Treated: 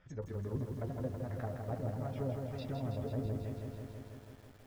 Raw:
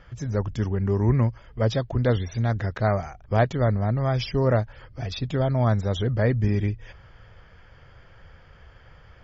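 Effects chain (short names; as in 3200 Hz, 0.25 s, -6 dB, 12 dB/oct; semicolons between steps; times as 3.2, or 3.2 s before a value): resonator 84 Hz, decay 0.22 s, harmonics all, mix 90%; dynamic EQ 690 Hz, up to -4 dB, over -46 dBFS, Q 7.4; tempo 1.9×; treble ducked by the level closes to 560 Hz, closed at -27.5 dBFS; speed mistake 24 fps film run at 25 fps; lo-fi delay 0.163 s, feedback 80%, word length 9-bit, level -5 dB; gain -7.5 dB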